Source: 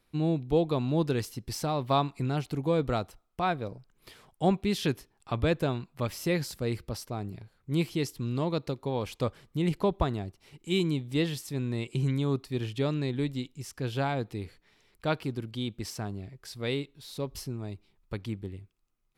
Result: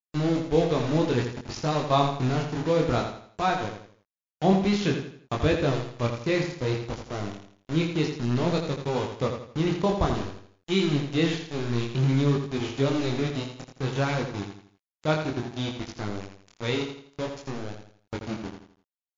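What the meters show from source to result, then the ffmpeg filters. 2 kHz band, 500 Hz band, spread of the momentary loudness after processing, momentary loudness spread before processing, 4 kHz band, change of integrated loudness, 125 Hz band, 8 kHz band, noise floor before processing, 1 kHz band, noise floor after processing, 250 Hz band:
+5.5 dB, +4.0 dB, 12 LU, 12 LU, +4.0 dB, +4.0 dB, +3.5 dB, +1.0 dB, −70 dBFS, +4.0 dB, below −85 dBFS, +4.0 dB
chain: -filter_complex "[0:a]acontrast=72,aeval=exprs='val(0)*gte(abs(val(0)),0.0501)':channel_layout=same,flanger=delay=20:depth=6.2:speed=0.56,asplit=2[link_01][link_02];[link_02]aecho=0:1:83|166|249|332:0.447|0.17|0.0645|0.0245[link_03];[link_01][link_03]amix=inputs=2:normalize=0" -ar 16000 -c:a libmp3lame -b:a 80k

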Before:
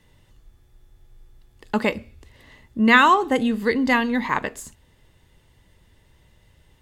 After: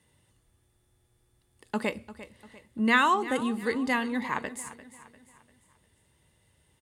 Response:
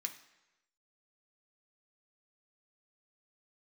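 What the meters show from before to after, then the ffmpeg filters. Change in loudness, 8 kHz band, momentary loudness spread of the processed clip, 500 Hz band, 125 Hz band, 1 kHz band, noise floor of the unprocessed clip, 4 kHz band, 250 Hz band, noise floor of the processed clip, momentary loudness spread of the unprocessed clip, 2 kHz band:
−8.0 dB, −2.0 dB, 21 LU, −8.0 dB, −8.0 dB, −8.0 dB, −59 dBFS, −7.5 dB, −8.0 dB, −70 dBFS, 16 LU, −8.0 dB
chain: -filter_complex "[0:a]highpass=78,equalizer=frequency=9200:width_type=o:width=0.32:gain=14,asplit=2[link_01][link_02];[link_02]aecho=0:1:347|694|1041|1388:0.168|0.0722|0.031|0.0133[link_03];[link_01][link_03]amix=inputs=2:normalize=0,volume=-8dB"

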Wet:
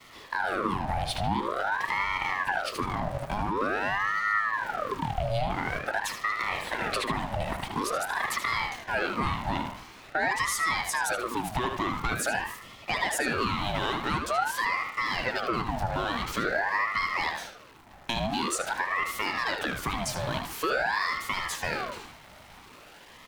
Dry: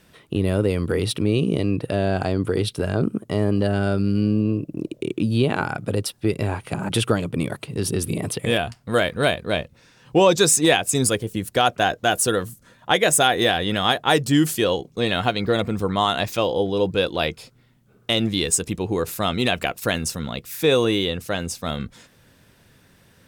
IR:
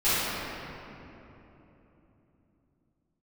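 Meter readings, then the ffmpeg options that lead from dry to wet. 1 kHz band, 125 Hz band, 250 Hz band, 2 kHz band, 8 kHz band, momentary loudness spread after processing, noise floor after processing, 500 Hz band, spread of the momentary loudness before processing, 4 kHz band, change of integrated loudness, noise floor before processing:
−2.0 dB, −12.5 dB, −13.5 dB, −1.0 dB, −12.0 dB, 6 LU, −51 dBFS, −12.5 dB, 9 LU, −10.0 dB, −7.5 dB, −56 dBFS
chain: -filter_complex "[0:a]aeval=exprs='val(0)+0.5*0.0398*sgn(val(0))':channel_layout=same,agate=range=-33dB:threshold=-26dB:ratio=3:detection=peak,highpass=frequency=240:width=0.5412,highpass=frequency=240:width=1.3066,highshelf=frequency=5000:gain=-11.5,asplit=2[link_01][link_02];[link_02]alimiter=limit=-12.5dB:level=0:latency=1,volume=0dB[link_03];[link_01][link_03]amix=inputs=2:normalize=0,acompressor=threshold=-20dB:ratio=4,asoftclip=type=tanh:threshold=-13dB,asplit=2[link_04][link_05];[link_05]adelay=76,lowpass=frequency=3500:poles=1,volume=-5dB,asplit=2[link_06][link_07];[link_07]adelay=76,lowpass=frequency=3500:poles=1,volume=0.38,asplit=2[link_08][link_09];[link_09]adelay=76,lowpass=frequency=3500:poles=1,volume=0.38,asplit=2[link_10][link_11];[link_11]adelay=76,lowpass=frequency=3500:poles=1,volume=0.38,asplit=2[link_12][link_13];[link_13]adelay=76,lowpass=frequency=3500:poles=1,volume=0.38[link_14];[link_04][link_06][link_08][link_10][link_12][link_14]amix=inputs=6:normalize=0,aeval=exprs='val(0)*sin(2*PI*980*n/s+980*0.65/0.47*sin(2*PI*0.47*n/s))':channel_layout=same,volume=-3dB"

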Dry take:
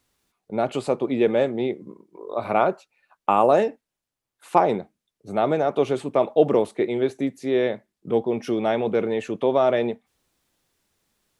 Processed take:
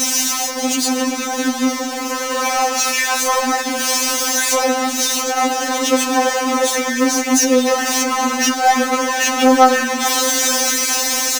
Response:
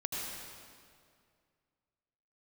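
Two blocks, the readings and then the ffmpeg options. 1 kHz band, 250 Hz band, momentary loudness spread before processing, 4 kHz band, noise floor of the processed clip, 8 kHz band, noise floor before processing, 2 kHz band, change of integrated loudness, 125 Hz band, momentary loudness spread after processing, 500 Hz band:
+9.0 dB, +8.0 dB, 11 LU, +22.5 dB, −23 dBFS, can't be measured, below −85 dBFS, +16.5 dB, +7.0 dB, below −15 dB, 5 LU, +1.0 dB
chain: -filter_complex "[0:a]aeval=exprs='val(0)+0.5*0.141*sgn(val(0))':channel_layout=same,afftfilt=real='re*lt(hypot(re,im),1)':imag='im*lt(hypot(re,im),1)':win_size=1024:overlap=0.75,highpass=70,equalizer=frequency=6100:width_type=o:width=0.51:gain=13.5,acrossover=split=340|2400[link_01][link_02][link_03];[link_02]dynaudnorm=framelen=760:gausssize=5:maxgain=10dB[link_04];[link_01][link_04][link_03]amix=inputs=3:normalize=0,aeval=exprs='val(0)+0.00631*(sin(2*PI*50*n/s)+sin(2*PI*2*50*n/s)/2+sin(2*PI*3*50*n/s)/3+sin(2*PI*4*50*n/s)/4+sin(2*PI*5*50*n/s)/5)':channel_layout=same,asoftclip=type=tanh:threshold=-5dB,asplit=4[link_05][link_06][link_07][link_08];[link_06]adelay=104,afreqshift=-42,volume=-19dB[link_09];[link_07]adelay=208,afreqshift=-84,volume=-28.6dB[link_10];[link_08]adelay=312,afreqshift=-126,volume=-38.3dB[link_11];[link_05][link_09][link_10][link_11]amix=inputs=4:normalize=0,afftfilt=real='re*3.46*eq(mod(b,12),0)':imag='im*3.46*eq(mod(b,12),0)':win_size=2048:overlap=0.75,volume=3.5dB"

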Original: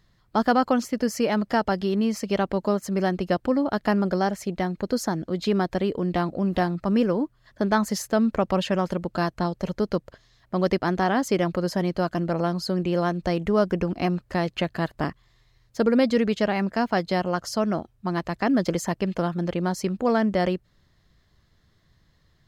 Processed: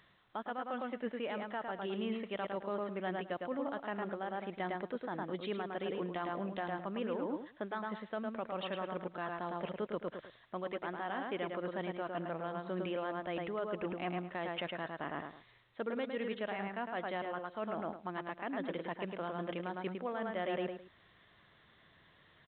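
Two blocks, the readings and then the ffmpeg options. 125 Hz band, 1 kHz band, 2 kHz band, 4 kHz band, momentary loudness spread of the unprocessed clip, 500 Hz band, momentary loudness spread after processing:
−19.0 dB, −12.0 dB, −11.0 dB, −13.0 dB, 6 LU, −13.0 dB, 3 LU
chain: -filter_complex "[0:a]highpass=frequency=660:poles=1,asplit=2[link_01][link_02];[link_02]adelay=107,lowpass=frequency=2900:poles=1,volume=-4.5dB,asplit=2[link_03][link_04];[link_04]adelay=107,lowpass=frequency=2900:poles=1,volume=0.24,asplit=2[link_05][link_06];[link_06]adelay=107,lowpass=frequency=2900:poles=1,volume=0.24[link_07];[link_01][link_03][link_05][link_07]amix=inputs=4:normalize=0,areverse,acompressor=threshold=-38dB:ratio=8,areverse,alimiter=level_in=9dB:limit=-24dB:level=0:latency=1:release=378,volume=-9dB,volume=5.5dB" -ar 8000 -c:a pcm_alaw

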